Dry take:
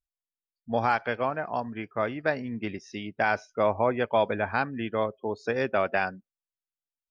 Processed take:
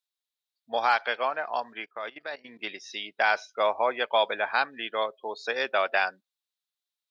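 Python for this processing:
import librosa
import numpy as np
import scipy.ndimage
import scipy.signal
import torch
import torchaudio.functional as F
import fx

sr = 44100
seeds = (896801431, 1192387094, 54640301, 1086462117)

y = fx.level_steps(x, sr, step_db=17, at=(1.85, 2.59))
y = scipy.signal.sosfilt(scipy.signal.butter(2, 650.0, 'highpass', fs=sr, output='sos'), y)
y = fx.peak_eq(y, sr, hz=3800.0, db=12.0, octaves=0.52)
y = F.gain(torch.from_numpy(y), 2.5).numpy()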